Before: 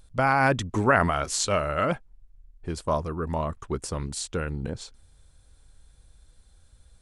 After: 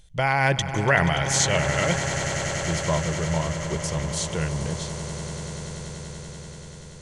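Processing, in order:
thirty-one-band graphic EQ 160 Hz +9 dB, 250 Hz −12 dB, 1,250 Hz −9 dB, 2,000 Hz +9 dB, 3,150 Hz +11 dB, 6,300 Hz +9 dB
on a send: echo that builds up and dies away 96 ms, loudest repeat 8, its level −14.5 dB

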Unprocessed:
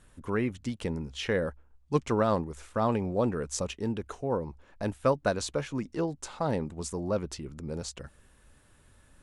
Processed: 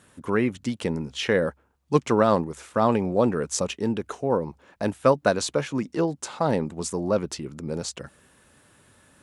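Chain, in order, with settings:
high-pass filter 130 Hz 12 dB per octave
level +6.5 dB

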